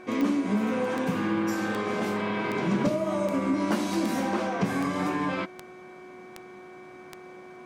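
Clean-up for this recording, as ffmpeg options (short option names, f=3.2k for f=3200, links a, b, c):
-af "adeclick=t=4,bandreject=f=366.7:t=h:w=4,bandreject=f=733.4:t=h:w=4,bandreject=f=1.1001k:t=h:w=4,bandreject=f=1.4668k:t=h:w=4,bandreject=f=1.8335k:t=h:w=4,bandreject=f=2.2002k:t=h:w=4,bandreject=f=2.3k:w=30"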